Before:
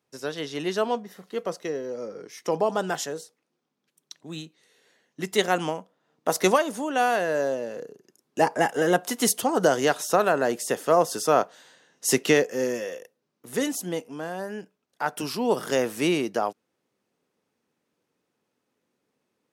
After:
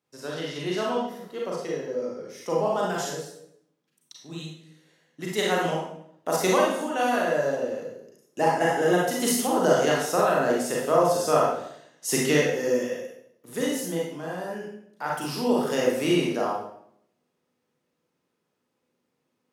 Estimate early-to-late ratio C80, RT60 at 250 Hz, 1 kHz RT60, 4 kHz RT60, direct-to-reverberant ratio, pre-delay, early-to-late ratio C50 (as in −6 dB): 5.0 dB, 0.85 s, 0.65 s, 0.60 s, −4.0 dB, 32 ms, 1.0 dB